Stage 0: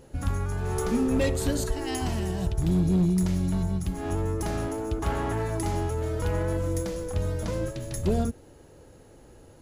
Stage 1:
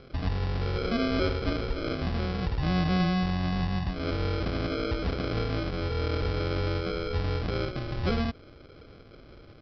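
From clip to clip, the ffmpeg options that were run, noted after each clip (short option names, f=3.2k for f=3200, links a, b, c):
-af "alimiter=limit=-22dB:level=0:latency=1:release=143,aresample=11025,acrusher=samples=12:mix=1:aa=0.000001,aresample=44100,volume=1.5dB"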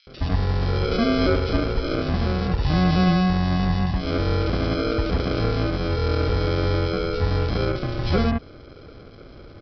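-filter_complex "[0:a]acrossover=split=2500[a][b];[a]adelay=70[c];[c][b]amix=inputs=2:normalize=0,volume=7.5dB" -ar 16000 -c:a libmp3lame -b:a 64k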